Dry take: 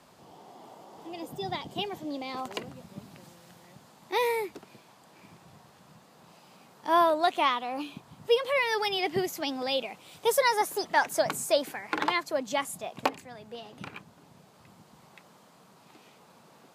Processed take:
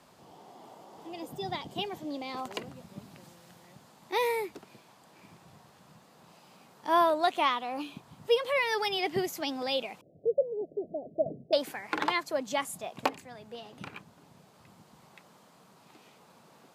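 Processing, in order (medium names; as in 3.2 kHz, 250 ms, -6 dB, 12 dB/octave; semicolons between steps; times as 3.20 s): 10.01–11.53 s: steep low-pass 670 Hz 96 dB/octave; trim -1.5 dB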